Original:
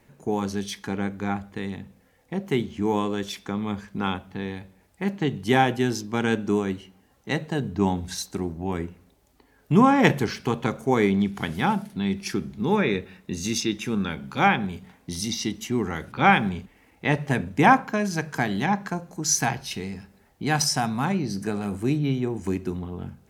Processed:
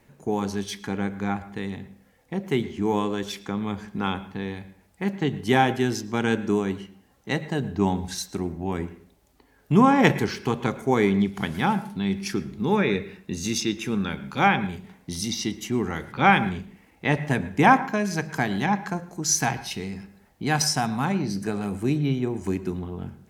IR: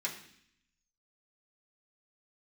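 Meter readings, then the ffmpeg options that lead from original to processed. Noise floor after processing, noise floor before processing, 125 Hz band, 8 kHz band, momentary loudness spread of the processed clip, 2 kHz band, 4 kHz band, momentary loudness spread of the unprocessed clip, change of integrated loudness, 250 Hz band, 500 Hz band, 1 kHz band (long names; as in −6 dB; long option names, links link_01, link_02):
−60 dBFS, −61 dBFS, 0.0 dB, 0.0 dB, 13 LU, 0.0 dB, 0.0 dB, 13 LU, 0.0 dB, 0.0 dB, 0.0 dB, 0.0 dB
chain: -filter_complex "[0:a]asplit=2[link_01][link_02];[link_02]highshelf=frequency=4900:gain=-11.5[link_03];[1:a]atrim=start_sample=2205,afade=type=out:start_time=0.19:duration=0.01,atrim=end_sample=8820,adelay=108[link_04];[link_03][link_04]afir=irnorm=-1:irlink=0,volume=-17.5dB[link_05];[link_01][link_05]amix=inputs=2:normalize=0"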